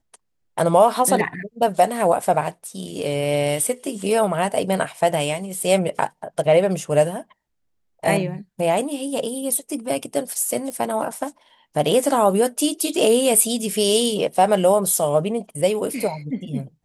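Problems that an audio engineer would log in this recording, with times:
10.70 s: pop -18 dBFS

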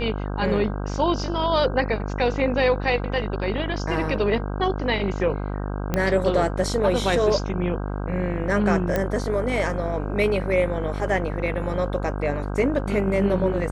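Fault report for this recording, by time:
buzz 50 Hz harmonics 32 -28 dBFS
5.94 s: pop -9 dBFS
8.96 s: pop -10 dBFS

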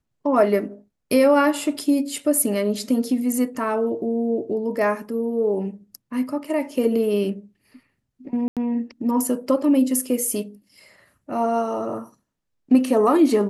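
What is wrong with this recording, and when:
8.48–8.57 s: dropout 87 ms

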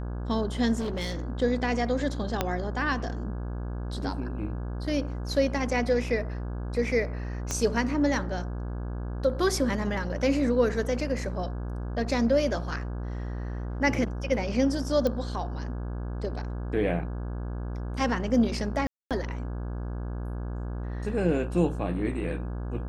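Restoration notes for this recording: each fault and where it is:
buzz 60 Hz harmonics 28 -33 dBFS
0.79–1.30 s: clipped -27 dBFS
2.41 s: pop -10 dBFS
7.51 s: pop -15 dBFS
15.07 s: pop -16 dBFS
18.87–19.11 s: dropout 237 ms

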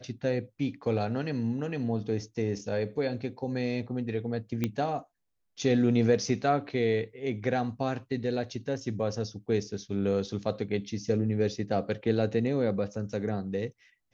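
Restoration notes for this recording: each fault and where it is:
4.64 s: pop -15 dBFS

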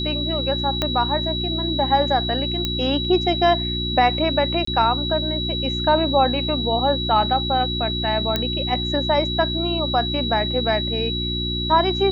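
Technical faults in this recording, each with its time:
hum 60 Hz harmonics 6 -27 dBFS
whine 3.9 kHz -25 dBFS
0.82 s: pop -7 dBFS
2.65 s: pop -8 dBFS
4.65–4.67 s: dropout 24 ms
8.36 s: pop -7 dBFS

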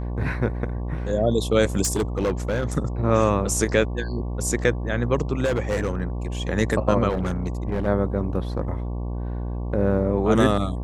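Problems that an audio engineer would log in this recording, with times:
buzz 60 Hz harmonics 19 -28 dBFS
1.84–2.72 s: clipped -18 dBFS
5.44–6.02 s: clipped -18.5 dBFS
7.09–7.88 s: clipped -20 dBFS

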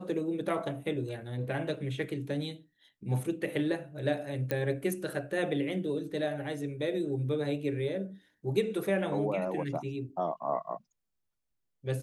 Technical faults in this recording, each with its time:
4.51 s: pop -17 dBFS

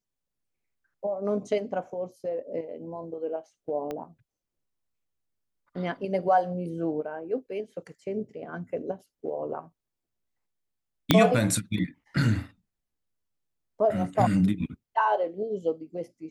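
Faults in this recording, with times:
3.91 s: pop -21 dBFS
11.11 s: pop -3 dBFS

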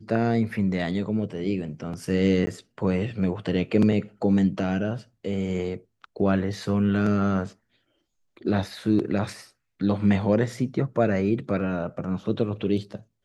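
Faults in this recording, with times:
2.46–2.47 s: dropout 10 ms

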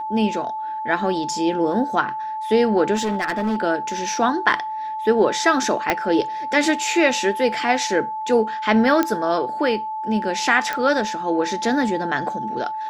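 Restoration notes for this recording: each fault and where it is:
whine 870 Hz -25 dBFS
2.95–3.60 s: clipped -18 dBFS
5.90 s: pop -4 dBFS
9.03 s: pop -6 dBFS
10.73 s: pop -10 dBFS

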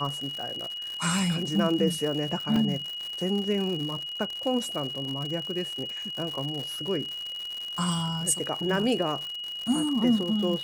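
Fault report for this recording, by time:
crackle 140 per s -32 dBFS
whine 2.9 kHz -33 dBFS
2.56 s: dropout 3 ms

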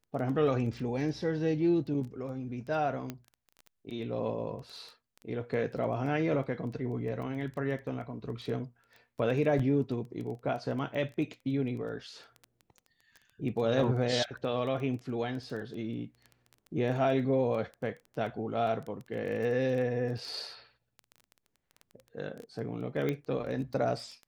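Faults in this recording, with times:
crackle 11 per s -37 dBFS
3.10 s: pop -22 dBFS
9.59–9.60 s: dropout 5 ms
23.09 s: pop -20 dBFS

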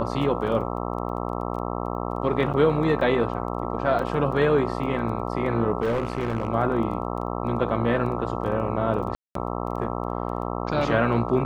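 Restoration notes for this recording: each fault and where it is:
buzz 60 Hz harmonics 22 -29 dBFS
crackle 10 per s -34 dBFS
2.53–2.54 s: dropout 8.3 ms
3.99 s: dropout 2.8 ms
5.82–6.48 s: clipped -20 dBFS
9.15–9.35 s: dropout 203 ms

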